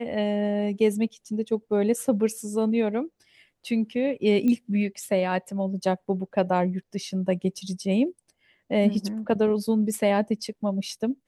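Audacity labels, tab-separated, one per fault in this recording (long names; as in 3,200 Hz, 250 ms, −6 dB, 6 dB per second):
4.480000	4.480000	click −16 dBFS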